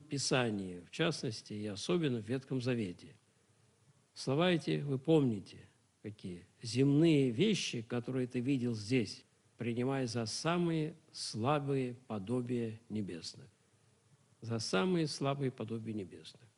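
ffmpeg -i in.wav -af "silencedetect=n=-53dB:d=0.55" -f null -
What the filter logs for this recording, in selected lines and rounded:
silence_start: 3.16
silence_end: 4.16 | silence_duration: 1.00
silence_start: 13.47
silence_end: 14.43 | silence_duration: 0.96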